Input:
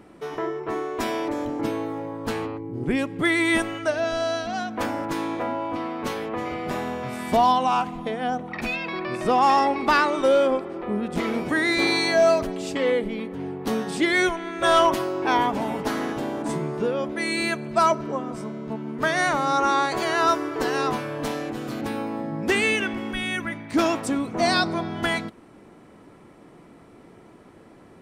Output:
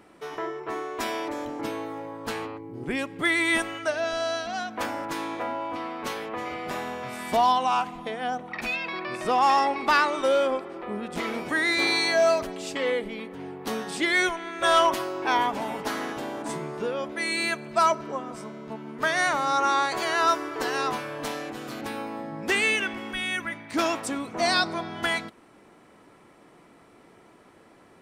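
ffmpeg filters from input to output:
-af "lowshelf=f=460:g=-9.5"

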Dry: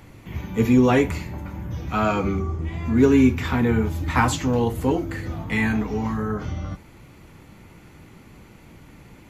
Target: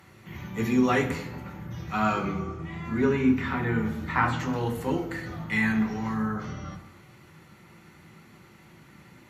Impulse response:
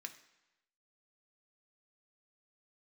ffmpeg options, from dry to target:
-filter_complex "[0:a]asettb=1/sr,asplit=3[a][b][c];[a]atrim=end=2.324[d];[b]atrim=start=2.32:end=4.4,asetpts=PTS-STARTPTS,afade=t=in:d=0.004:c=qsin,afade=t=out:st=2.076:d=0.004:c=qsin,acrossover=split=3100[e][f];[f]acompressor=threshold=-52dB:ratio=4:attack=1:release=60[g];[e][g]amix=inputs=2:normalize=0[h];[c]atrim=start=4.396[i];[d][h]acrossfade=d=0.004:c1=hsin:c2=qsin[j];[j][i]acrossfade=d=0.004:c1=qsin:c2=hsin[k];[1:a]atrim=start_sample=2205,asetrate=33516,aresample=44100[l];[k][l]afir=irnorm=-1:irlink=0"

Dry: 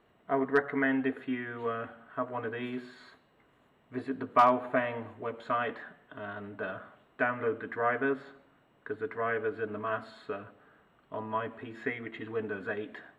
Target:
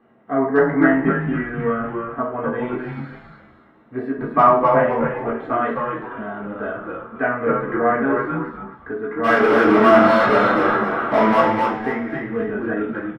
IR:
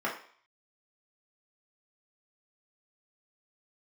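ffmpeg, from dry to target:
-filter_complex "[0:a]lowshelf=f=460:g=10,bandreject=f=3.3k:w=23,asplit=3[a][b][c];[a]afade=t=out:st=9.23:d=0.02[d];[b]asplit=2[e][f];[f]highpass=f=720:p=1,volume=40dB,asoftclip=type=tanh:threshold=-14.5dB[g];[e][g]amix=inputs=2:normalize=0,lowpass=f=2.3k:p=1,volume=-6dB,afade=t=in:st=9.23:d=0.02,afade=t=out:st=11.4:d=0.02[h];[c]afade=t=in:st=11.4:d=0.02[i];[d][h][i]amix=inputs=3:normalize=0,asplit=6[j][k][l][m][n][o];[k]adelay=259,afreqshift=-110,volume=-3dB[p];[l]adelay=518,afreqshift=-220,volume=-11.4dB[q];[m]adelay=777,afreqshift=-330,volume=-19.8dB[r];[n]adelay=1036,afreqshift=-440,volume=-28.2dB[s];[o]adelay=1295,afreqshift=-550,volume=-36.6dB[t];[j][p][q][r][s][t]amix=inputs=6:normalize=0[u];[1:a]atrim=start_sample=2205[v];[u][v]afir=irnorm=-1:irlink=0,volume=-3dB"

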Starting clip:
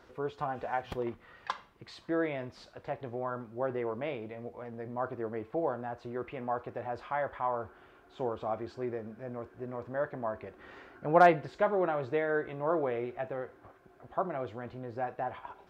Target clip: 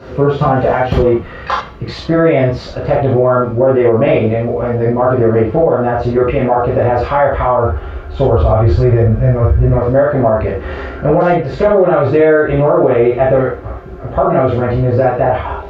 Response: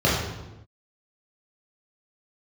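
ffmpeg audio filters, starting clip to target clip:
-filter_complex "[0:a]asettb=1/sr,asplit=3[a][b][c];[a]atrim=end=7.394[d];[b]atrim=start=7.39:end=9.69,asetpts=PTS-STARTPTS,afade=t=in:d=0.004:c=qsin,afade=t=out:st=2.296:d=0.004:c=qsin,asubboost=boost=11.5:cutoff=100[e];[c]atrim=start=9.686[f];[d][e]acrossfade=d=0.004:c1=hsin:c2=qsin[g];[g][f]acrossfade=d=0.004:c1=qsin:c2=hsin,acompressor=threshold=-32dB:ratio=6,asubboost=boost=7:cutoff=50[h];[1:a]atrim=start_sample=2205,atrim=end_sample=4410[i];[h][i]afir=irnorm=-1:irlink=0,alimiter=level_in=8dB:limit=-1dB:release=50:level=0:latency=1,volume=-1dB"

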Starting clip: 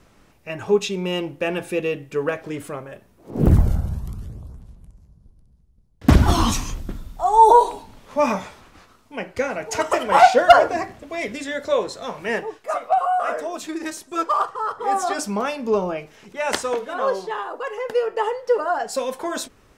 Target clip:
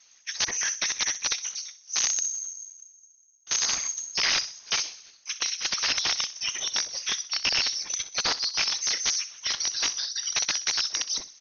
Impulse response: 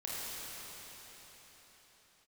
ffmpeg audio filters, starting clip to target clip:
-filter_complex "[0:a]alimiter=limit=-11.5dB:level=0:latency=1:release=234,afftfilt=real='hypot(re,im)*cos(2*PI*random(0))':imag='hypot(re,im)*sin(2*PI*random(1))':win_size=512:overlap=0.75,aeval=exprs='(mod(11.2*val(0)+1,2)-1)/11.2':c=same,crystalizer=i=2.5:c=0,asplit=2[a][b];[b]adelay=109,lowpass=f=1.9k:p=1,volume=-12.5dB,asplit=2[c][d];[d]adelay=109,lowpass=f=1.9k:p=1,volume=0.52,asplit=2[e][f];[f]adelay=109,lowpass=f=1.9k:p=1,volume=0.52,asplit=2[g][h];[h]adelay=109,lowpass=f=1.9k:p=1,volume=0.52,asplit=2[i][j];[j]adelay=109,lowpass=f=1.9k:p=1,volume=0.52[k];[a][c][e][g][i][k]amix=inputs=6:normalize=0,lowpass=f=3.2k:t=q:w=0.5098,lowpass=f=3.2k:t=q:w=0.6013,lowpass=f=3.2k:t=q:w=0.9,lowpass=f=3.2k:t=q:w=2.563,afreqshift=-3800,asetrate=76440,aresample=44100,volume=2.5dB"

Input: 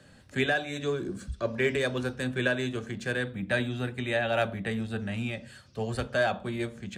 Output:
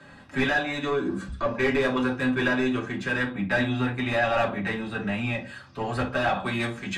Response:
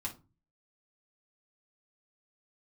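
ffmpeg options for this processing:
-filter_complex "[0:a]asetnsamples=n=441:p=0,asendcmd='6.35 lowpass f 3900',asplit=2[a][b];[b]highpass=f=720:p=1,volume=20dB,asoftclip=type=tanh:threshold=-12dB[c];[a][c]amix=inputs=2:normalize=0,lowpass=f=1.3k:p=1,volume=-6dB[d];[1:a]atrim=start_sample=2205,afade=t=out:st=0.14:d=0.01,atrim=end_sample=6615[e];[d][e]afir=irnorm=-1:irlink=0"

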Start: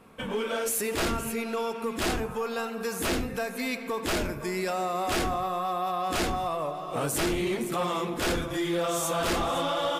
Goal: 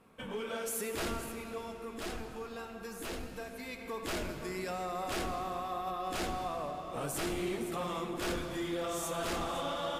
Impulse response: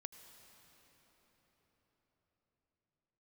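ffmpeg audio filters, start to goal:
-filter_complex "[0:a]asettb=1/sr,asplit=3[a][b][c];[a]atrim=end=1.264[d];[b]atrim=start=1.26:end=3.79,asetpts=PTS-STARTPTS,afade=t=in:d=0.004:c=qsin,afade=t=out:st=2.526:d=0.004:c=qsin,flanger=delay=1.1:depth=4.9:regen=63:speed=1:shape=sinusoidal[e];[c]atrim=start=3.786[f];[d][e]acrossfade=d=0.004:c1=hsin:c2=qsin[g];[g][f]acrossfade=d=0.004:c1=qsin:c2=hsin[h];[1:a]atrim=start_sample=2205,asetrate=61740,aresample=44100[i];[h][i]afir=irnorm=-1:irlink=0"

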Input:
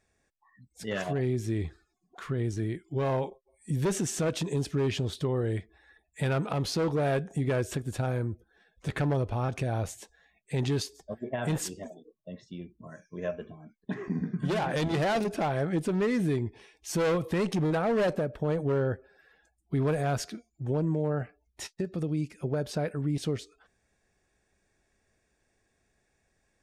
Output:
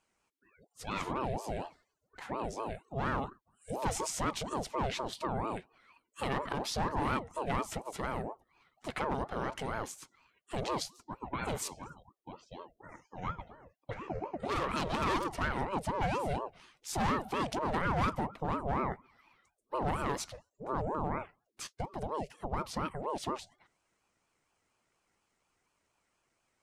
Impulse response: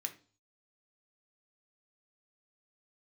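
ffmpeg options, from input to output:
-af "lowshelf=f=210:g=-8.5,aeval=exprs='val(0)*sin(2*PI*530*n/s+530*0.5/4.2*sin(2*PI*4.2*n/s))':c=same"

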